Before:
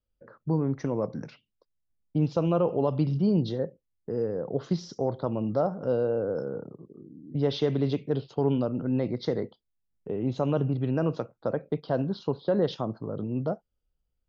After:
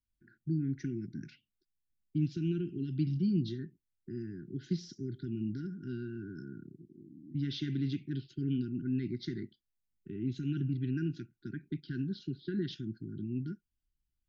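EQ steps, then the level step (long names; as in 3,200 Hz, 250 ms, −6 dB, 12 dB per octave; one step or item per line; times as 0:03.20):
linear-phase brick-wall band-stop 390–1,400 Hz
−5.5 dB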